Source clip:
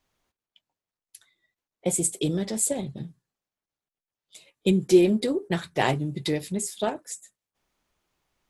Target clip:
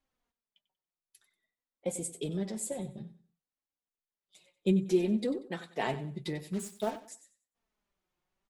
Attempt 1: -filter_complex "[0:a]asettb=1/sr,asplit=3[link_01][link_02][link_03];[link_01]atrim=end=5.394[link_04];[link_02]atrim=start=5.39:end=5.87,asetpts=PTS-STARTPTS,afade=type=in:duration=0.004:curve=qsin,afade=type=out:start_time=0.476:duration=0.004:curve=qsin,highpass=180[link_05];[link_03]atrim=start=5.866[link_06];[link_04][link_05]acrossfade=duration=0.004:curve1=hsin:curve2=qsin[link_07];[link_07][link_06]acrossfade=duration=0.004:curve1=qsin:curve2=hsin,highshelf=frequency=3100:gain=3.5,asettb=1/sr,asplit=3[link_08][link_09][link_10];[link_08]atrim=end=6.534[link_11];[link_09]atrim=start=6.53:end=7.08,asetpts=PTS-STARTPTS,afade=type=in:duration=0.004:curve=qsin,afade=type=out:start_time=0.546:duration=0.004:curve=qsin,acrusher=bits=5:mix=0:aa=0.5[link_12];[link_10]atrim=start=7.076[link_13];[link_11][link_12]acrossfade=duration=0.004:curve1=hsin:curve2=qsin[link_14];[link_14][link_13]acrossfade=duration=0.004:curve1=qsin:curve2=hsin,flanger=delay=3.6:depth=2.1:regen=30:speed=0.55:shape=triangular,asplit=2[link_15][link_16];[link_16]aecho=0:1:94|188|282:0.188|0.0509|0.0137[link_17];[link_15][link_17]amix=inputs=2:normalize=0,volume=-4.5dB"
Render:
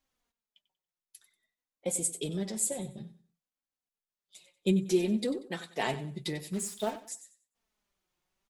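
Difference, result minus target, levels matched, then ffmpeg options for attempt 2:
8,000 Hz band +6.5 dB
-filter_complex "[0:a]asettb=1/sr,asplit=3[link_01][link_02][link_03];[link_01]atrim=end=5.394[link_04];[link_02]atrim=start=5.39:end=5.87,asetpts=PTS-STARTPTS,afade=type=in:duration=0.004:curve=qsin,afade=type=out:start_time=0.476:duration=0.004:curve=qsin,highpass=180[link_05];[link_03]atrim=start=5.866[link_06];[link_04][link_05]acrossfade=duration=0.004:curve1=hsin:curve2=qsin[link_07];[link_07][link_06]acrossfade=duration=0.004:curve1=qsin:curve2=hsin,highshelf=frequency=3100:gain=-5.5,asettb=1/sr,asplit=3[link_08][link_09][link_10];[link_08]atrim=end=6.534[link_11];[link_09]atrim=start=6.53:end=7.08,asetpts=PTS-STARTPTS,afade=type=in:duration=0.004:curve=qsin,afade=type=out:start_time=0.546:duration=0.004:curve=qsin,acrusher=bits=5:mix=0:aa=0.5[link_12];[link_10]atrim=start=7.076[link_13];[link_11][link_12]acrossfade=duration=0.004:curve1=hsin:curve2=qsin[link_14];[link_14][link_13]acrossfade=duration=0.004:curve1=qsin:curve2=hsin,flanger=delay=3.6:depth=2.1:regen=30:speed=0.55:shape=triangular,asplit=2[link_15][link_16];[link_16]aecho=0:1:94|188|282:0.188|0.0509|0.0137[link_17];[link_15][link_17]amix=inputs=2:normalize=0,volume=-4.5dB"

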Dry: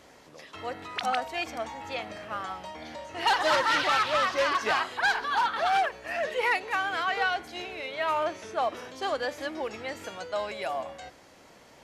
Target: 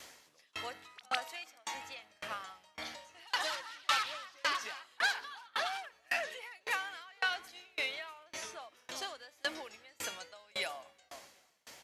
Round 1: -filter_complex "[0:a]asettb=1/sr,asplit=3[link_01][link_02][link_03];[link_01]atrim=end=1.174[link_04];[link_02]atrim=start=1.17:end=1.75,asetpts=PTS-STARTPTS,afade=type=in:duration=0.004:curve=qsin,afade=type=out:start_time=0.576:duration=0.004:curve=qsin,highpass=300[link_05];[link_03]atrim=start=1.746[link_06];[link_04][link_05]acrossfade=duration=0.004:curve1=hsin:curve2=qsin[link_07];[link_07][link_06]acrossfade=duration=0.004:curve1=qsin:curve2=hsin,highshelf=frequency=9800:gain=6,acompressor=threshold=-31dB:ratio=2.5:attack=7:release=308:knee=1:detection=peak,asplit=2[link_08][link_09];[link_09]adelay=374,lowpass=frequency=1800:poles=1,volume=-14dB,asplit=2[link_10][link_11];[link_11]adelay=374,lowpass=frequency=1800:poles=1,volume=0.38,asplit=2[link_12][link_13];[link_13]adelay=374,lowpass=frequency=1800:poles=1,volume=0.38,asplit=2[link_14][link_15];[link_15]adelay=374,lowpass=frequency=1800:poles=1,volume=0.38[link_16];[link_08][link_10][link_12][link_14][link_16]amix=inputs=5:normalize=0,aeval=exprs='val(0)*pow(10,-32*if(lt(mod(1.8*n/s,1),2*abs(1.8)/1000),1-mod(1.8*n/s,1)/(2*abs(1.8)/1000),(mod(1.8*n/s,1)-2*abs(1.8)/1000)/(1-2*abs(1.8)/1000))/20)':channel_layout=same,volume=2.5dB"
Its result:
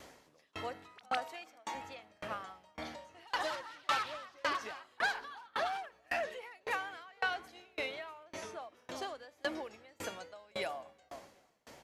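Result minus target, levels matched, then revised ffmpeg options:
1,000 Hz band +3.0 dB
-filter_complex "[0:a]asettb=1/sr,asplit=3[link_01][link_02][link_03];[link_01]atrim=end=1.174[link_04];[link_02]atrim=start=1.17:end=1.75,asetpts=PTS-STARTPTS,afade=type=in:duration=0.004:curve=qsin,afade=type=out:start_time=0.576:duration=0.004:curve=qsin,highpass=300[link_05];[link_03]atrim=start=1.746[link_06];[link_04][link_05]acrossfade=duration=0.004:curve1=hsin:curve2=qsin[link_07];[link_07][link_06]acrossfade=duration=0.004:curve1=qsin:curve2=hsin,highshelf=frequency=9800:gain=6,acompressor=threshold=-31dB:ratio=2.5:attack=7:release=308:knee=1:detection=peak,tiltshelf=frequency=1200:gain=-7.5,asplit=2[link_08][link_09];[link_09]adelay=374,lowpass=frequency=1800:poles=1,volume=-14dB,asplit=2[link_10][link_11];[link_11]adelay=374,lowpass=frequency=1800:poles=1,volume=0.38,asplit=2[link_12][link_13];[link_13]adelay=374,lowpass=frequency=1800:poles=1,volume=0.38,asplit=2[link_14][link_15];[link_15]adelay=374,lowpass=frequency=1800:poles=1,volume=0.38[link_16];[link_08][link_10][link_12][link_14][link_16]amix=inputs=5:normalize=0,aeval=exprs='val(0)*pow(10,-32*if(lt(mod(1.8*n/s,1),2*abs(1.8)/1000),1-mod(1.8*n/s,1)/(2*abs(1.8)/1000),(mod(1.8*n/s,1)-2*abs(1.8)/1000)/(1-2*abs(1.8)/1000))/20)':channel_layout=same,volume=2.5dB"

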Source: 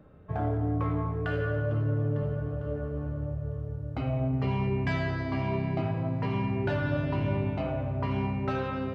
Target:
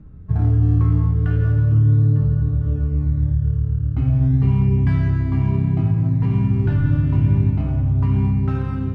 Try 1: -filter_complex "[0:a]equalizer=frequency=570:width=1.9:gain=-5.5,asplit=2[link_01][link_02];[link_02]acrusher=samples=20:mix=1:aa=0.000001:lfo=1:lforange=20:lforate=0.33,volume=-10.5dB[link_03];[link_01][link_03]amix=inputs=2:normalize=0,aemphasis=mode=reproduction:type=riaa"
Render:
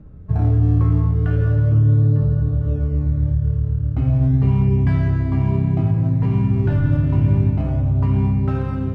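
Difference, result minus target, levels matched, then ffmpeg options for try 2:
500 Hz band +4.0 dB
-filter_complex "[0:a]equalizer=frequency=570:width=1.9:gain=-14,asplit=2[link_01][link_02];[link_02]acrusher=samples=20:mix=1:aa=0.000001:lfo=1:lforange=20:lforate=0.33,volume=-10.5dB[link_03];[link_01][link_03]amix=inputs=2:normalize=0,aemphasis=mode=reproduction:type=riaa"

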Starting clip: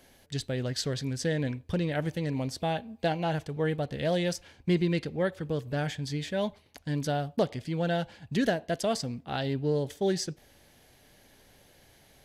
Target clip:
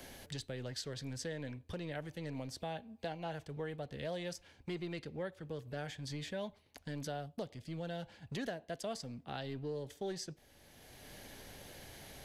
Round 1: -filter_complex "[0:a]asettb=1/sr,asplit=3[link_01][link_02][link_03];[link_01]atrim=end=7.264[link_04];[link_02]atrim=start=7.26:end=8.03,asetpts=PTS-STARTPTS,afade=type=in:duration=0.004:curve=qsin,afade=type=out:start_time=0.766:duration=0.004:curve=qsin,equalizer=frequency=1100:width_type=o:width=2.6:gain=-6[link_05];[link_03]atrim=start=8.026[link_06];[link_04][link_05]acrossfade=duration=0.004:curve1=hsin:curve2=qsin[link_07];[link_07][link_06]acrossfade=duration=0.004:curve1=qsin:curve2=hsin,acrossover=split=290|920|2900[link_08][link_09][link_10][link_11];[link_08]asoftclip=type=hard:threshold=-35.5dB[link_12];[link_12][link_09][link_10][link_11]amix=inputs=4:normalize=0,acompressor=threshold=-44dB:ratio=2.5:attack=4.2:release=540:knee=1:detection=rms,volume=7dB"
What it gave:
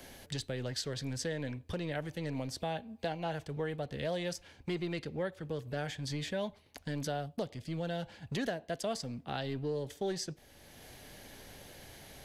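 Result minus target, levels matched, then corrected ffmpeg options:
downward compressor: peak gain reduction −5 dB
-filter_complex "[0:a]asettb=1/sr,asplit=3[link_01][link_02][link_03];[link_01]atrim=end=7.264[link_04];[link_02]atrim=start=7.26:end=8.03,asetpts=PTS-STARTPTS,afade=type=in:duration=0.004:curve=qsin,afade=type=out:start_time=0.766:duration=0.004:curve=qsin,equalizer=frequency=1100:width_type=o:width=2.6:gain=-6[link_05];[link_03]atrim=start=8.026[link_06];[link_04][link_05]acrossfade=duration=0.004:curve1=hsin:curve2=qsin[link_07];[link_07][link_06]acrossfade=duration=0.004:curve1=qsin:curve2=hsin,acrossover=split=290|920|2900[link_08][link_09][link_10][link_11];[link_08]asoftclip=type=hard:threshold=-35.5dB[link_12];[link_12][link_09][link_10][link_11]amix=inputs=4:normalize=0,acompressor=threshold=-52.5dB:ratio=2.5:attack=4.2:release=540:knee=1:detection=rms,volume=7dB"

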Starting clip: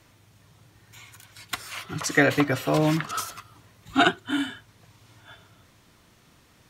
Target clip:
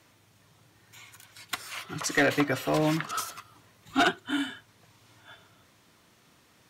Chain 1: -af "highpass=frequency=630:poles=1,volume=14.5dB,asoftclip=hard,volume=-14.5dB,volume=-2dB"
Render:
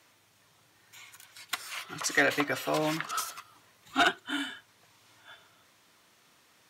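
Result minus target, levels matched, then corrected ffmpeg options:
125 Hz band −7.0 dB
-af "highpass=frequency=170:poles=1,volume=14.5dB,asoftclip=hard,volume=-14.5dB,volume=-2dB"

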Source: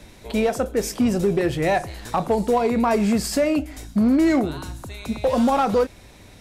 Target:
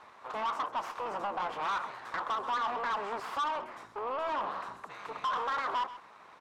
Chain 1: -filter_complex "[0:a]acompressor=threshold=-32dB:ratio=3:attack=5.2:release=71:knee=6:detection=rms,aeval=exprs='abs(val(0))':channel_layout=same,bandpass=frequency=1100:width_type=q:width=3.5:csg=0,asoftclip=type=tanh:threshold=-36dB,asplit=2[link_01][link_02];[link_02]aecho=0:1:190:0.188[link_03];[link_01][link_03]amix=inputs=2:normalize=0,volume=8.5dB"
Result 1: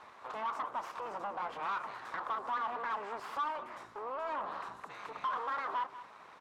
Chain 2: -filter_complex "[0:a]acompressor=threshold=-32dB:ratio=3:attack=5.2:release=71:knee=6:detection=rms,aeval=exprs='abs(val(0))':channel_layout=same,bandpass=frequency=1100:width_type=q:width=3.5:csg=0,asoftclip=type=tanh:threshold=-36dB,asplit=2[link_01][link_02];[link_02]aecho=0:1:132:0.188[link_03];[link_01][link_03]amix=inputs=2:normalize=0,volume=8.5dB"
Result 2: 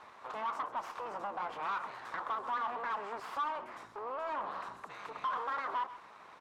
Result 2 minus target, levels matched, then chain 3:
downward compressor: peak gain reduction +6 dB
-filter_complex "[0:a]acompressor=threshold=-23dB:ratio=3:attack=5.2:release=71:knee=6:detection=rms,aeval=exprs='abs(val(0))':channel_layout=same,bandpass=frequency=1100:width_type=q:width=3.5:csg=0,asoftclip=type=tanh:threshold=-36dB,asplit=2[link_01][link_02];[link_02]aecho=0:1:132:0.188[link_03];[link_01][link_03]amix=inputs=2:normalize=0,volume=8.5dB"

